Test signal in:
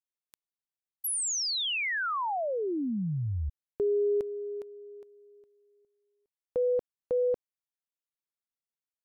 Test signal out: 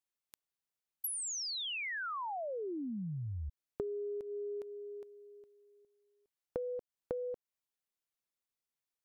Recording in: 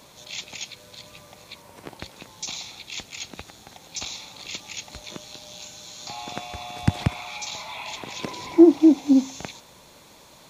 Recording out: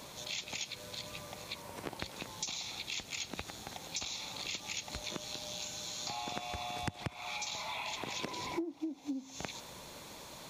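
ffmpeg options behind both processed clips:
ffmpeg -i in.wav -af "acompressor=threshold=-39dB:ratio=20:attack=54:release=164:knee=6:detection=rms,volume=1dB" out.wav

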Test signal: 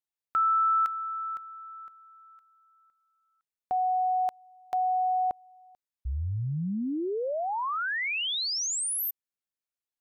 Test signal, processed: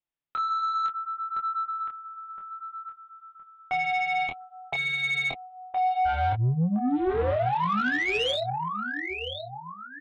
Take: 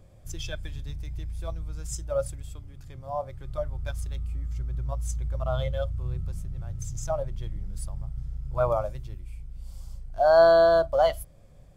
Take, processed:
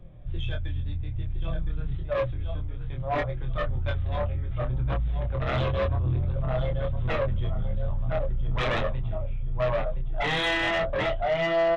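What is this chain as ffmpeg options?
ffmpeg -i in.wav -filter_complex "[0:a]acrossover=split=340[link_01][link_02];[link_02]dynaudnorm=framelen=240:gausssize=21:maxgain=7dB[link_03];[link_01][link_03]amix=inputs=2:normalize=0,asplit=2[link_04][link_05];[link_05]adelay=1015,lowpass=frequency=2800:poles=1,volume=-6dB,asplit=2[link_06][link_07];[link_07]adelay=1015,lowpass=frequency=2800:poles=1,volume=0.33,asplit=2[link_08][link_09];[link_09]adelay=1015,lowpass=frequency=2800:poles=1,volume=0.33,asplit=2[link_10][link_11];[link_11]adelay=1015,lowpass=frequency=2800:poles=1,volume=0.33[link_12];[link_04][link_06][link_08][link_10][link_12]amix=inputs=5:normalize=0,aresample=8000,aeval=exprs='0.0841*(abs(mod(val(0)/0.0841+3,4)-2)-1)':channel_layout=same,aresample=44100,flanger=delay=5.6:depth=5.2:regen=-21:speed=0.6:shape=triangular,lowshelf=frequency=240:gain=7.5,asplit=2[link_13][link_14];[link_14]adelay=24,volume=-3.5dB[link_15];[link_13][link_15]amix=inputs=2:normalize=0,asoftclip=type=tanh:threshold=-22dB,volume=3dB" out.wav

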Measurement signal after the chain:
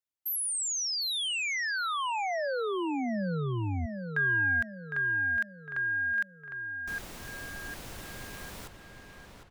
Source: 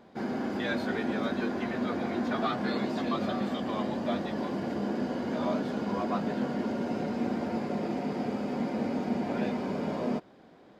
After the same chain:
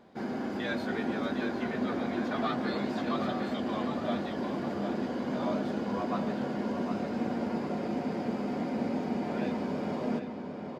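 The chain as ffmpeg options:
ffmpeg -i in.wav -filter_complex "[0:a]asplit=2[link_01][link_02];[link_02]adelay=757,lowpass=frequency=4000:poles=1,volume=-6.5dB,asplit=2[link_03][link_04];[link_04]adelay=757,lowpass=frequency=4000:poles=1,volume=0.5,asplit=2[link_05][link_06];[link_06]adelay=757,lowpass=frequency=4000:poles=1,volume=0.5,asplit=2[link_07][link_08];[link_08]adelay=757,lowpass=frequency=4000:poles=1,volume=0.5,asplit=2[link_09][link_10];[link_10]adelay=757,lowpass=frequency=4000:poles=1,volume=0.5,asplit=2[link_11][link_12];[link_12]adelay=757,lowpass=frequency=4000:poles=1,volume=0.5[link_13];[link_01][link_03][link_05][link_07][link_09][link_11][link_13]amix=inputs=7:normalize=0,volume=-2dB" out.wav

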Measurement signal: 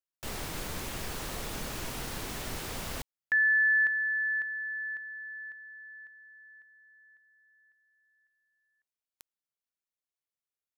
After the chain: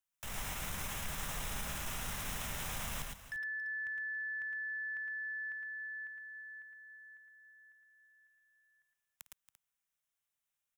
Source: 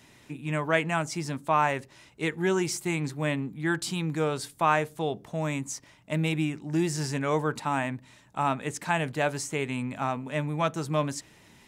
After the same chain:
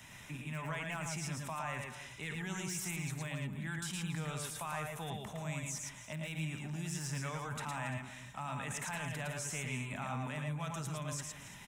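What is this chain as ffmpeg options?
ffmpeg -i in.wav -filter_complex "[0:a]alimiter=limit=-18.5dB:level=0:latency=1:release=376,acrossover=split=180|3100[link_01][link_02][link_03];[link_02]acompressor=threshold=-39dB:ratio=6:attack=64:release=67:knee=2.83:detection=peak[link_04];[link_01][link_04][link_03]amix=inputs=3:normalize=0,equalizer=frequency=360:width=1.1:gain=-13.5,aeval=exprs='0.0562*(abs(mod(val(0)/0.0562+3,4)-2)-1)':channel_layout=same,areverse,acompressor=threshold=-46dB:ratio=6:attack=8.6:release=23:detection=peak,areverse,equalizer=frequency=4500:width=5:gain=-12.5,aecho=1:1:54|110|115|278|342:0.141|0.596|0.422|0.178|0.158,volume=4dB" out.wav

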